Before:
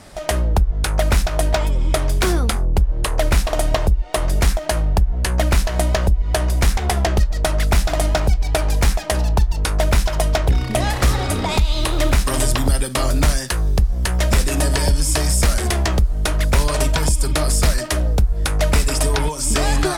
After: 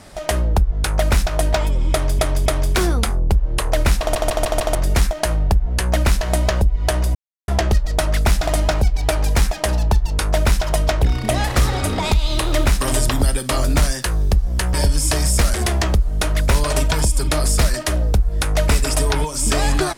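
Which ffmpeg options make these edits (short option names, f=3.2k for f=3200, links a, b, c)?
-filter_complex "[0:a]asplit=11[a][b][c][d][e][f][g][h][i][j][k];[a]atrim=end=2.192[l];[b]atrim=start=1.918:end=2.192[m];[c]atrim=start=1.918:end=3.612[n];[d]atrim=start=3.458:end=3.612[o];[e]atrim=start=3.458:end=3.612[p];[f]atrim=start=3.458:end=3.612[q];[g]atrim=start=3.458:end=3.612[r];[h]atrim=start=4.208:end=6.61,asetpts=PTS-STARTPTS,afade=t=out:st=2.398:d=0.004:c=hsin[s];[i]atrim=start=6.61:end=6.94,asetpts=PTS-STARTPTS,volume=0[t];[j]atrim=start=6.94:end=14.202,asetpts=PTS-STARTPTS,afade=t=in:d=0.004:c=hsin[u];[k]atrim=start=14.778[v];[l][m]acrossfade=d=0.004:c1=hsin:c2=hsin[w];[w][n]acrossfade=d=0.004:c1=hsin:c2=hsin[x];[x][o]acrossfade=d=0.004:c1=hsin:c2=hsin[y];[y][p]acrossfade=d=0.004:c1=hsin:c2=hsin[z];[z][q]acrossfade=d=0.004:c1=hsin:c2=hsin[aa];[aa][r]acrossfade=d=0.004:c1=hsin:c2=hsin[ab];[s][t][u]concat=n=3:v=0:a=1[ac];[ab][ac]acrossfade=d=0.004:c1=hsin:c2=hsin[ad];[ad][v]acrossfade=d=0.004:c1=hsin:c2=hsin"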